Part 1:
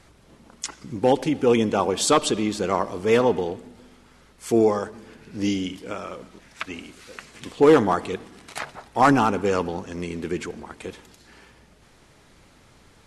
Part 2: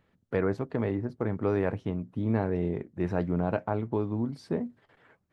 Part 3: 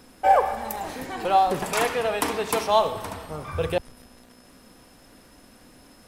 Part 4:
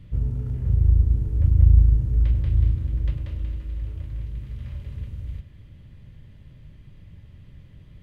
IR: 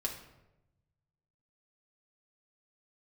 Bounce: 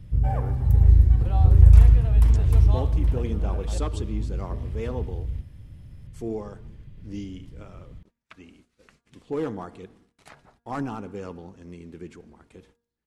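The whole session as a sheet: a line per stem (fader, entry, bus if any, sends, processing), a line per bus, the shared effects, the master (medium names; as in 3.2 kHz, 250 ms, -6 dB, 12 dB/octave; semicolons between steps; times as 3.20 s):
-18.0 dB, 1.70 s, no send, gate -44 dBFS, range -24 dB; bass shelf 440 Hz +5 dB
-15.5 dB, 0.00 s, no send, none
-17.5 dB, 0.00 s, no send, none
-3.5 dB, 0.00 s, no send, none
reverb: none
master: bass shelf 250 Hz +6.5 dB; de-hum 235.4 Hz, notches 7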